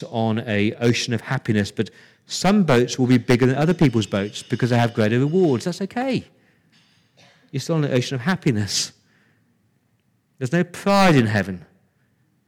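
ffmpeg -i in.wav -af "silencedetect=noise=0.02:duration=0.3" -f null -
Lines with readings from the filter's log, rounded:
silence_start: 1.88
silence_end: 2.30 | silence_duration: 0.42
silence_start: 6.22
silence_end: 7.54 | silence_duration: 1.31
silence_start: 8.89
silence_end: 10.41 | silence_duration: 1.52
silence_start: 11.62
silence_end: 12.48 | silence_duration: 0.86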